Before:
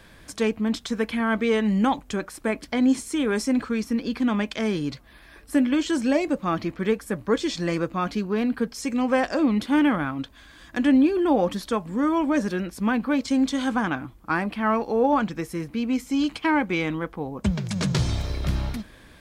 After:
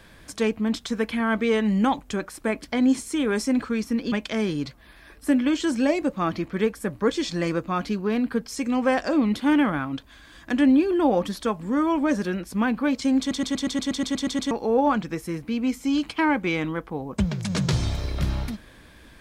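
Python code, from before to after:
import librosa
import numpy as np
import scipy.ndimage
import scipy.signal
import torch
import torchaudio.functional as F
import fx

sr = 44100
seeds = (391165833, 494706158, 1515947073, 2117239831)

y = fx.edit(x, sr, fx.cut(start_s=4.12, length_s=0.26),
    fx.stutter_over(start_s=13.45, slice_s=0.12, count=11), tone=tone)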